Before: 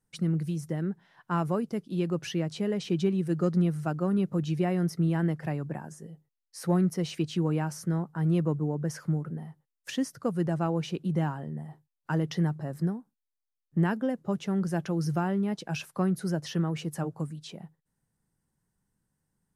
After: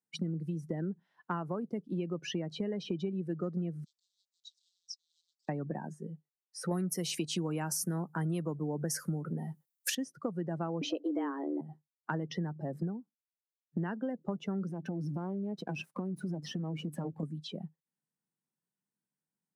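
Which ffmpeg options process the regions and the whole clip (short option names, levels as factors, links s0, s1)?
-filter_complex "[0:a]asettb=1/sr,asplit=3[s0][s1][s2];[s0]atrim=end=3.844[s3];[s1]atrim=start=3.84:end=5.49,asetpts=PTS-STARTPTS,afade=t=in:d=0.004:c=qsin,afade=t=out:st=1.646:d=0.004:c=qsin,asoftclip=type=hard:threshold=0.0299,asuperpass=centerf=5600:order=12:qfactor=1.2[s4];[s2]atrim=start=5.486[s5];[s3][s4]acrossfade=d=0.004:c1=hsin:c2=qsin[s6];[s6][s5]acrossfade=d=0.004:c1=qsin:c2=hsin,asettb=1/sr,asplit=3[s7][s8][s9];[s7]atrim=end=6.714[s10];[s8]atrim=start=6.71:end=9.95,asetpts=PTS-STARTPTS,afade=t=in:d=0.004:c=qsin,afade=t=out:st=3.236:d=0.004:c=qsin,aemphasis=mode=production:type=75kf,acontrast=57[s11];[s9]atrim=start=9.946[s12];[s10][s11]acrossfade=d=0.004:c1=hsin:c2=qsin[s13];[s13][s12]acrossfade=d=0.004:c1=qsin:c2=hsin,asettb=1/sr,asplit=3[s14][s15][s16];[s14]atrim=end=10.814[s17];[s15]atrim=start=10.81:end=11.61,asetpts=PTS-STARTPTS,afade=t=in:d=0.004:c=qsin,afade=t=out:st=0.796:d=0.004:c=qsin,afreqshift=140,acontrast=61[s18];[s16]atrim=start=11.606[s19];[s17][s18]acrossfade=d=0.004:c1=hsin:c2=qsin[s20];[s20][s19]acrossfade=d=0.004:c1=qsin:c2=hsin,asettb=1/sr,asplit=3[s21][s22][s23];[s21]atrim=end=14.694[s24];[s22]atrim=start=14.69:end=17.23,asetpts=PTS-STARTPTS,afade=t=in:d=0.004:c=qsin,afade=t=out:st=2.536:d=0.004:c=qsin,aeval=exprs='if(lt(val(0),0),0.251*val(0),val(0))':c=same,lowshelf=f=370:g=7,acompressor=threshold=0.0316:ratio=8:attack=3.2:release=140:knee=1:detection=peak[s25];[s23]atrim=start=17.226[s26];[s24][s25]acrossfade=d=0.004:c1=hsin:c2=qsin[s27];[s27][s26]acrossfade=d=0.004:c1=qsin:c2=hsin,afftdn=nr=18:nf=-41,highpass=f=160:w=0.5412,highpass=f=160:w=1.3066,acompressor=threshold=0.0141:ratio=6,volume=1.68"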